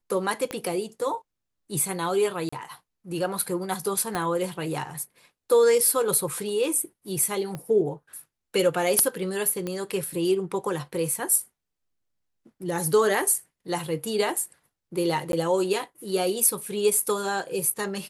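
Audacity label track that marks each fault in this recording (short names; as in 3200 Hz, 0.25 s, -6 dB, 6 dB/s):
0.510000	0.510000	pop -16 dBFS
2.490000	2.520000	gap 35 ms
4.150000	4.150000	pop -14 dBFS
7.550000	7.550000	pop -20 dBFS
9.670000	9.670000	pop -17 dBFS
15.320000	15.330000	gap 12 ms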